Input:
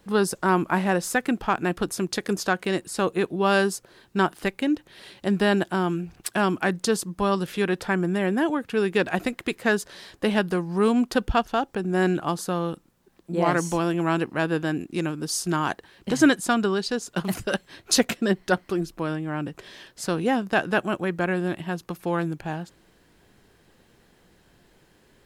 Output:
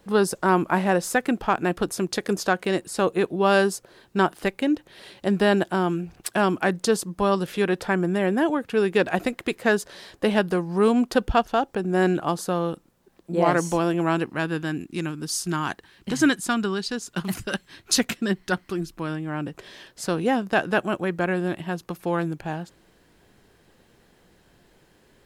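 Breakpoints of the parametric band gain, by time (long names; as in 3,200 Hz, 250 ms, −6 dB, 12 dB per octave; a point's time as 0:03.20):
parametric band 570 Hz 1.2 octaves
0:14.03 +3.5 dB
0:14.53 −6.5 dB
0:18.91 −6.5 dB
0:19.51 +1.5 dB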